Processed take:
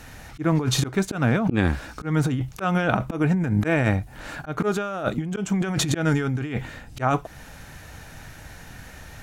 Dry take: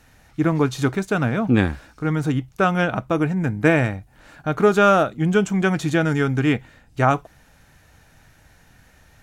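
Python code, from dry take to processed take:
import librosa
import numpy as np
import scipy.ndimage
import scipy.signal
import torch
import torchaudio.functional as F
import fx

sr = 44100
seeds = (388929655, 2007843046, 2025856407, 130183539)

y = fx.auto_swell(x, sr, attack_ms=434.0)
y = fx.over_compress(y, sr, threshold_db=-29.0, ratio=-1.0)
y = F.gain(torch.from_numpy(y), 6.5).numpy()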